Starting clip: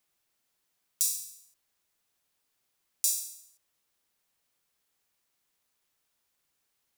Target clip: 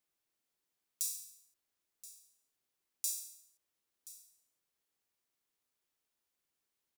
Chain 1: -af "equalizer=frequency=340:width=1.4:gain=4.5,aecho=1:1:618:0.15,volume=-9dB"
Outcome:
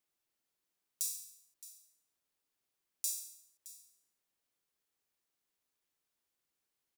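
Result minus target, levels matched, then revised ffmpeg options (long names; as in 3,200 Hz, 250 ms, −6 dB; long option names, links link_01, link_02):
echo 409 ms early
-af "equalizer=frequency=340:width=1.4:gain=4.5,aecho=1:1:1027:0.15,volume=-9dB"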